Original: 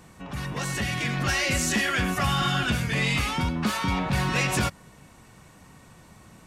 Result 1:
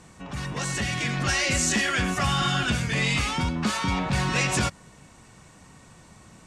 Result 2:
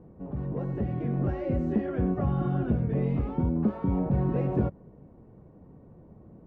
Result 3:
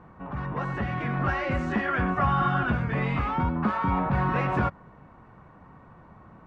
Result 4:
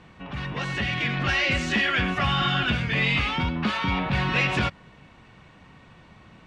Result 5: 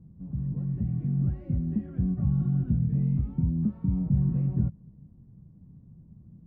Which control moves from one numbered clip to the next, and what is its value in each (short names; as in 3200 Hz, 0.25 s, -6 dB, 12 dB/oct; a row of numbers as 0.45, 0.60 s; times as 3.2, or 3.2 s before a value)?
synth low-pass, frequency: 7900, 460, 1200, 3100, 170 Hz